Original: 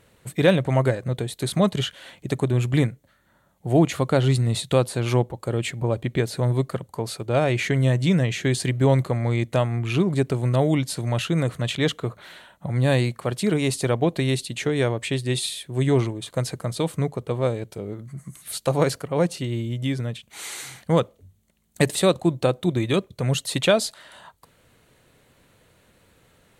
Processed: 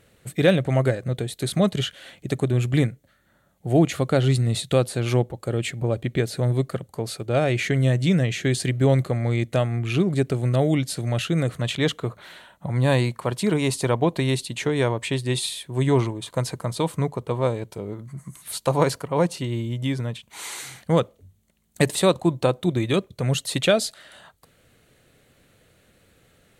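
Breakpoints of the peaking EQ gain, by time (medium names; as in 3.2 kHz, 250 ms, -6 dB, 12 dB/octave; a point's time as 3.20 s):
peaking EQ 970 Hz 0.29 oct
-8.5 dB
from 11.53 s +1 dB
from 12.68 s +8 dB
from 20.59 s -1 dB
from 21.86 s +5.5 dB
from 22.62 s -1 dB
from 23.60 s -10 dB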